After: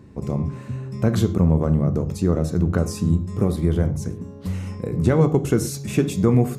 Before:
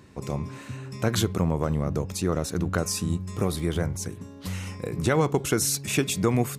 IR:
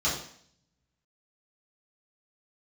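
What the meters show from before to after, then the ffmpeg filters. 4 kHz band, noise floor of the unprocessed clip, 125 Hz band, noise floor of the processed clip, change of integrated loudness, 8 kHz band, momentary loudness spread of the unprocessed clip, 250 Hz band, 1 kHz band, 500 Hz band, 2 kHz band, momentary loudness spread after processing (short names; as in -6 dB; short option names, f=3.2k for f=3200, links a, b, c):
-6.0 dB, -44 dBFS, +7.5 dB, -38 dBFS, +5.0 dB, -6.0 dB, 11 LU, +7.0 dB, -1.0 dB, +4.0 dB, -3.5 dB, 11 LU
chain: -filter_complex "[0:a]tiltshelf=f=650:g=7,asplit=2[a][b];[1:a]atrim=start_sample=2205,atrim=end_sample=6174[c];[b][c]afir=irnorm=-1:irlink=0,volume=-19.5dB[d];[a][d]amix=inputs=2:normalize=0,volume=1dB"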